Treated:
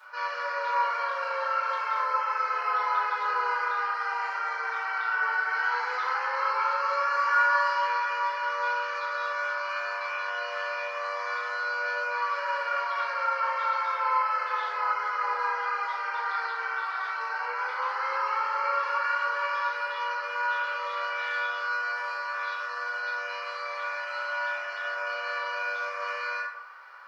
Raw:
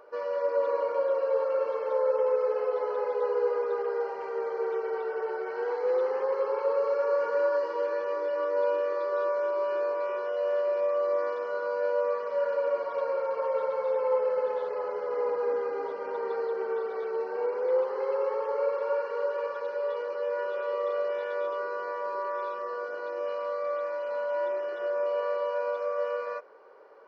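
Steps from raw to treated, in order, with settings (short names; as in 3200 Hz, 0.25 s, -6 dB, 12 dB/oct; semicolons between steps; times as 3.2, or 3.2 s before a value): HPF 1200 Hz 24 dB/oct; reverb RT60 0.65 s, pre-delay 4 ms, DRR -13 dB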